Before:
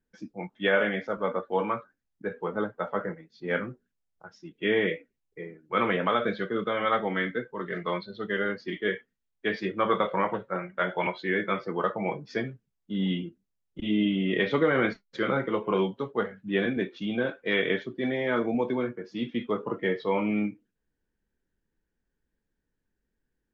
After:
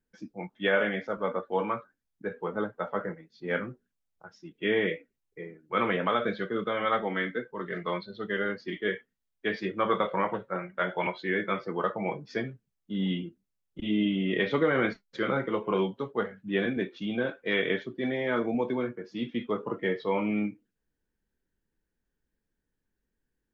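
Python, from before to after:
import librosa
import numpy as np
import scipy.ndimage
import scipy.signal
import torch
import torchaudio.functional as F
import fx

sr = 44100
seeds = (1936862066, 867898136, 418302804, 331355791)

y = fx.highpass(x, sr, hz=150.0, slope=12, at=(7.02, 7.51))
y = y * librosa.db_to_amplitude(-1.5)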